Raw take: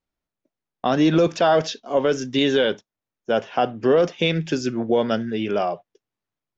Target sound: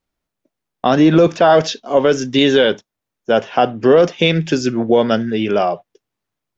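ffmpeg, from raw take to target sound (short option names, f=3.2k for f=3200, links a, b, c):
-filter_complex "[0:a]asettb=1/sr,asplit=3[a][b][c];[a]atrim=end=0.994[d];[b]atrim=start=0.99:end=1.5,asetpts=PTS-STARTPTS,afade=t=in:d=0.004:c=qsin,afade=t=out:st=0.506:d=0.004:c=qsin,acrossover=split=2500[e][f];[f]acompressor=threshold=-38dB:ratio=4:attack=1:release=60[g];[e][g]amix=inputs=2:normalize=0[h];[c]atrim=start=1.496[i];[d][h]acrossfade=d=0.004:c1=hsin:c2=qsin[j];[j][i]acrossfade=d=0.004:c1=qsin:c2=hsin,volume=6.5dB"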